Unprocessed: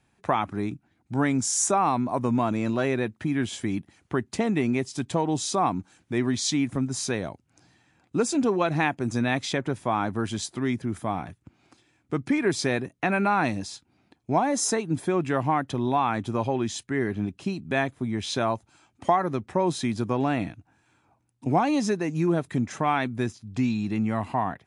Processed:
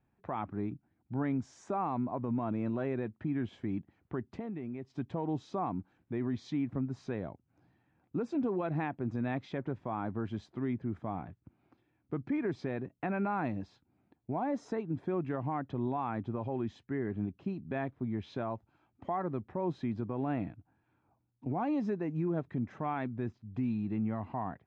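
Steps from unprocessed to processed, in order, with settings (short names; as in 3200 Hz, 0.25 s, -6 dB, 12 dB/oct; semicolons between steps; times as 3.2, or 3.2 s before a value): tape spacing loss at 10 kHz 44 dB; limiter -19.5 dBFS, peak gain reduction 7.5 dB; 4.32–4.9 compressor 4:1, threshold -32 dBFS, peak gain reduction 8 dB; gain -5.5 dB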